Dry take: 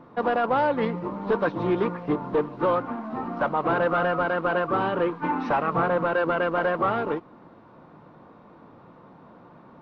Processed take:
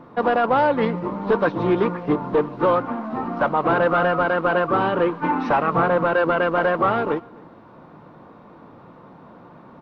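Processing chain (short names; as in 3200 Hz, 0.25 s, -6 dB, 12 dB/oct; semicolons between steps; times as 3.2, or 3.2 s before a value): outdoor echo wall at 44 m, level -25 dB; gain +4.5 dB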